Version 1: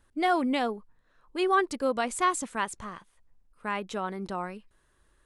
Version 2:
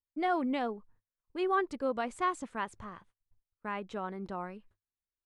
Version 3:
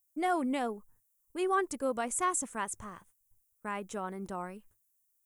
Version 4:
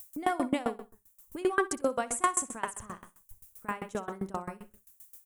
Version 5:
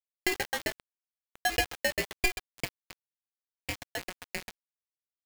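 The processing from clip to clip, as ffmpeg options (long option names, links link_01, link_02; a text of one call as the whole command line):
ffmpeg -i in.wav -af "aemphasis=mode=reproduction:type=75kf,agate=range=-32dB:threshold=-56dB:ratio=16:detection=peak,equalizer=frequency=100:width_type=o:width=0.28:gain=9.5,volume=-4.5dB" out.wav
ffmpeg -i in.wav -af "aexciter=amount=8.8:drive=6.2:freq=6300" out.wav
ffmpeg -i in.wav -filter_complex "[0:a]acompressor=mode=upward:threshold=-36dB:ratio=2.5,asplit=2[link_01][link_02];[link_02]aecho=0:1:62|124|186|248:0.422|0.16|0.0609|0.0231[link_03];[link_01][link_03]amix=inputs=2:normalize=0,aeval=exprs='val(0)*pow(10,-23*if(lt(mod(7.6*n/s,1),2*abs(7.6)/1000),1-mod(7.6*n/s,1)/(2*abs(7.6)/1000),(mod(7.6*n/s,1)-2*abs(7.6)/1000)/(1-2*abs(7.6)/1000))/20)':channel_layout=same,volume=7.5dB" out.wav
ffmpeg -i in.wav -af "highpass=frequency=320:width_type=q:width=0.5412,highpass=frequency=320:width_type=q:width=1.307,lowpass=frequency=2500:width_type=q:width=0.5176,lowpass=frequency=2500:width_type=q:width=0.7071,lowpass=frequency=2500:width_type=q:width=1.932,afreqshift=100,aeval=exprs='val(0)*gte(abs(val(0)),0.0224)':channel_layout=same,aeval=exprs='val(0)*sgn(sin(2*PI*1200*n/s))':channel_layout=same" out.wav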